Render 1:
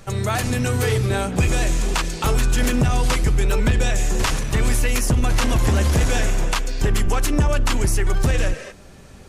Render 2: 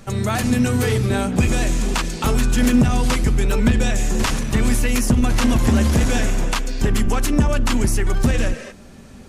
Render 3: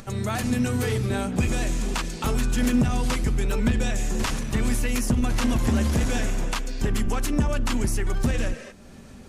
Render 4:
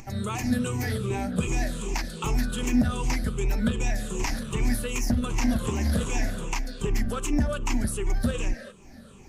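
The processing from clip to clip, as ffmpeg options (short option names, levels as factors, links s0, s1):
-af "equalizer=f=230:w=3.6:g=10.5"
-af "acompressor=mode=upward:threshold=0.0251:ratio=2.5,volume=0.501"
-af "afftfilt=real='re*pow(10,14/40*sin(2*PI*(0.71*log(max(b,1)*sr/1024/100)/log(2)-(-2.6)*(pts-256)/sr)))':imag='im*pow(10,14/40*sin(2*PI*(0.71*log(max(b,1)*sr/1024/100)/log(2)-(-2.6)*(pts-256)/sr)))':win_size=1024:overlap=0.75,volume=0.562"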